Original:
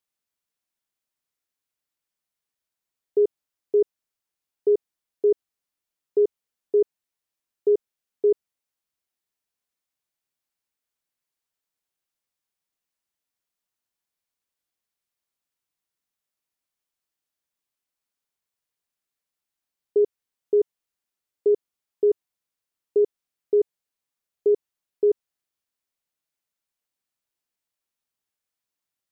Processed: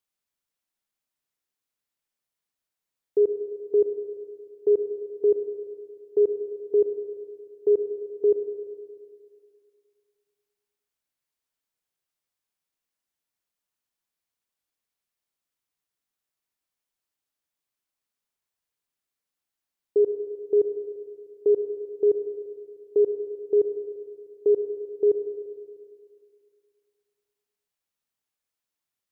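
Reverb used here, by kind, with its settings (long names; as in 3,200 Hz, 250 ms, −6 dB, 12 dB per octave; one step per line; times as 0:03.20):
spring reverb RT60 2.2 s, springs 34/38 ms, chirp 30 ms, DRR 8 dB
level −1 dB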